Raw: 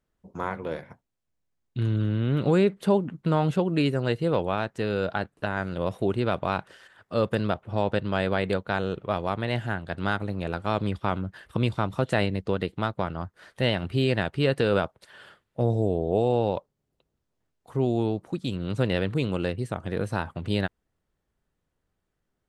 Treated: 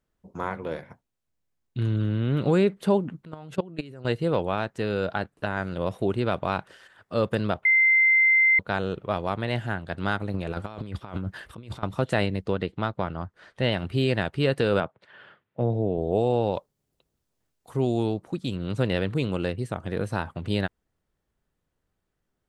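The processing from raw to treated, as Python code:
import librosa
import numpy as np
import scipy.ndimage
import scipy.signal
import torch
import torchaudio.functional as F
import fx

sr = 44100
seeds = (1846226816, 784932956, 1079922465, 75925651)

y = fx.level_steps(x, sr, step_db=21, at=(3.25, 4.05))
y = fx.over_compress(y, sr, threshold_db=-32.0, ratio=-0.5, at=(10.34, 11.83))
y = fx.air_absorb(y, sr, metres=67.0, at=(12.53, 13.72))
y = fx.cheby1_bandpass(y, sr, low_hz=120.0, high_hz=2500.0, order=2, at=(14.8, 15.98))
y = fx.high_shelf(y, sr, hz=4000.0, db=8.0, at=(16.53, 18.14))
y = fx.edit(y, sr, fx.bleep(start_s=7.65, length_s=0.94, hz=2080.0, db=-15.5), tone=tone)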